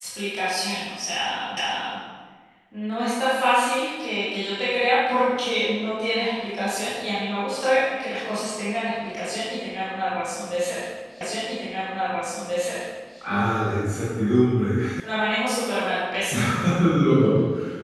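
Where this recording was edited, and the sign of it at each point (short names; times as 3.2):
1.57 repeat of the last 0.43 s
11.21 repeat of the last 1.98 s
15 sound cut off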